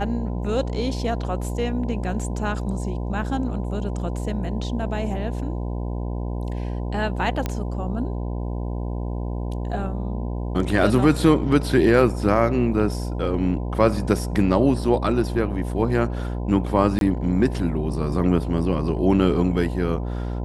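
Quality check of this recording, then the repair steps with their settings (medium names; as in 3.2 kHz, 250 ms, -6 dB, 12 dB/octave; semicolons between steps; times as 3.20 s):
buzz 60 Hz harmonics 17 -27 dBFS
7.46 s: pop -11 dBFS
16.99–17.01 s: dropout 22 ms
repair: de-click; de-hum 60 Hz, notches 17; interpolate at 16.99 s, 22 ms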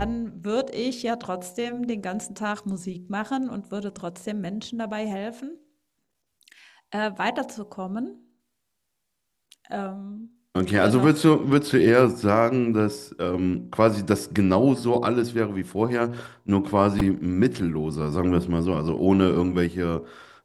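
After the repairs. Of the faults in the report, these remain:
nothing left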